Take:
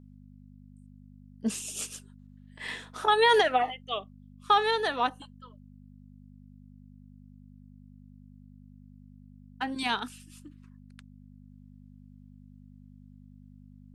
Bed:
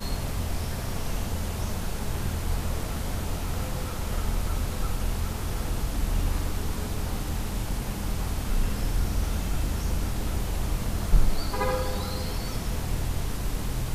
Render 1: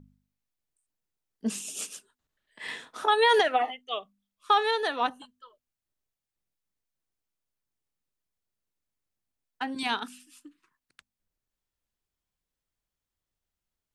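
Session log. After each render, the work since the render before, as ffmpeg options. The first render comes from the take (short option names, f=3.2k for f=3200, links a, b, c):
-af "bandreject=f=50:t=h:w=4,bandreject=f=100:t=h:w=4,bandreject=f=150:t=h:w=4,bandreject=f=200:t=h:w=4,bandreject=f=250:t=h:w=4"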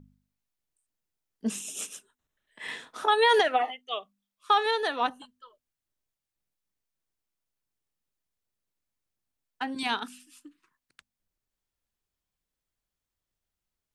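-filter_complex "[0:a]asettb=1/sr,asplit=3[a][b][c];[a]atrim=end=1.504[d];[b]atrim=start=1.5:end=2.72,asetpts=PTS-STARTPTS,afade=t=in:d=0.004:c=qsin,afade=t=out:st=1.216:d=0.004:c=qsin,bandreject=f=4.6k:w=5.1[e];[c]atrim=start=2.716[f];[d][e]acrossfade=d=0.004:c1=hsin:c2=qsin[g];[g][f]acrossfade=d=0.004:c1=qsin:c2=hsin,asettb=1/sr,asplit=3[h][i][j];[h]atrim=end=3.614[k];[i]atrim=start=3.61:end=4.66,asetpts=PTS-STARTPTS,afade=t=in:d=0.004:c=qsin,afade=t=out:st=1.046:d=0.004:c=qsin,lowshelf=f=170:g=-10[l];[j]atrim=start=4.656[m];[k][l]acrossfade=d=0.004:c1=hsin:c2=qsin[n];[n][m]acrossfade=d=0.004:c1=qsin:c2=hsin"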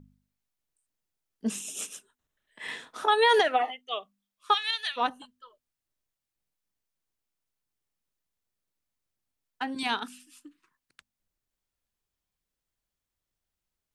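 -filter_complex "[0:a]asplit=3[a][b][c];[a]afade=t=out:st=4.53:d=0.02[d];[b]highpass=f=2.6k:t=q:w=1.7,afade=t=in:st=4.53:d=0.02,afade=t=out:st=4.96:d=0.02[e];[c]afade=t=in:st=4.96:d=0.02[f];[d][e][f]amix=inputs=3:normalize=0"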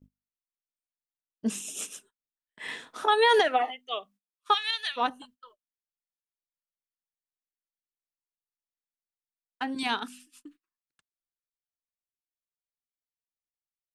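-af "agate=range=-25dB:threshold=-55dB:ratio=16:detection=peak,equalizer=f=300:t=o:w=0.77:g=2"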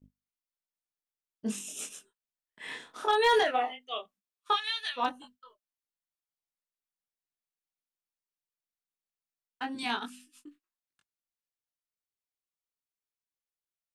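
-af "flanger=delay=20:depth=6.4:speed=0.19,asoftclip=type=hard:threshold=-17.5dB"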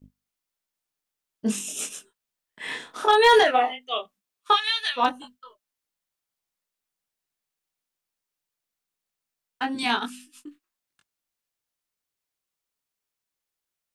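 -af "volume=8dB"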